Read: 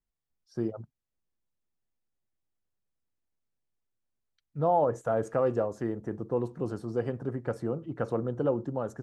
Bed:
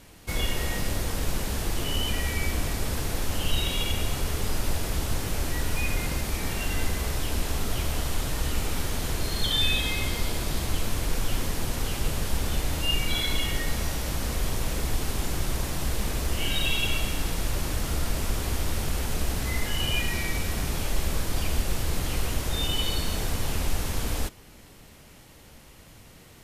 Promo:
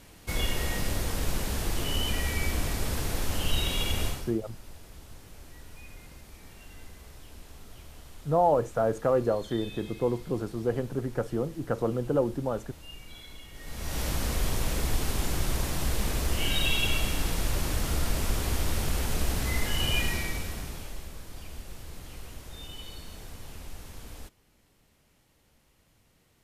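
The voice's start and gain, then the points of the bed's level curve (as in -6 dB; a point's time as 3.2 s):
3.70 s, +2.0 dB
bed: 4.07 s -1.5 dB
4.38 s -20 dB
13.51 s -20 dB
14 s -0.5 dB
20.06 s -0.5 dB
21.13 s -15.5 dB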